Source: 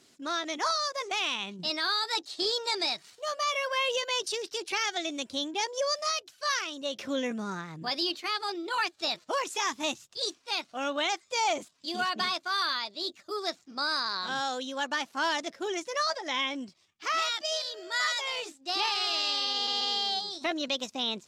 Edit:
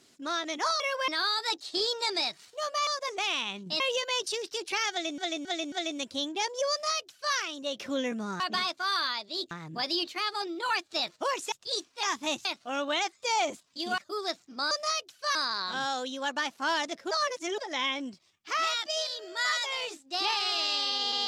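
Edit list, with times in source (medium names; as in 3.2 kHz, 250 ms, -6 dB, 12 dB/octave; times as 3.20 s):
0.80–1.73 s: swap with 3.52–3.80 s
4.91–5.18 s: loop, 4 plays
5.90–6.54 s: copy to 13.90 s
9.60–10.02 s: move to 10.53 s
12.06–13.17 s: move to 7.59 s
15.66–16.13 s: reverse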